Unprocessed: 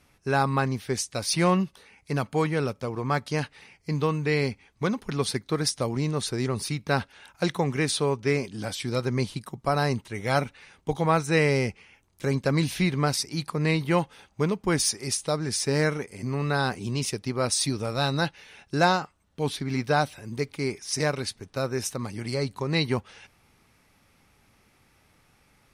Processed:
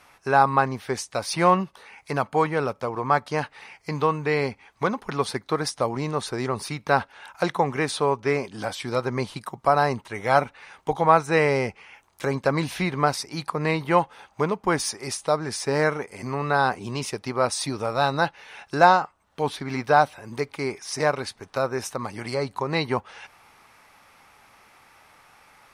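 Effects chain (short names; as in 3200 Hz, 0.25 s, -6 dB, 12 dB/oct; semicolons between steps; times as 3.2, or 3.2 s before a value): bell 910 Hz +13 dB 2.2 oct; mismatched tape noise reduction encoder only; gain -4.5 dB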